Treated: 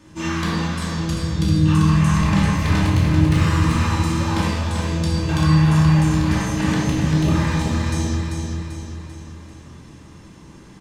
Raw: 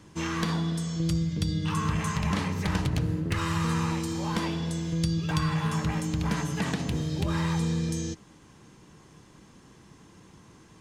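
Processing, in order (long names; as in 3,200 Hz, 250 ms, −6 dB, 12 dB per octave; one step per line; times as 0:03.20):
repeating echo 391 ms, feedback 49%, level −5 dB
rectangular room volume 480 cubic metres, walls mixed, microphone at 2.6 metres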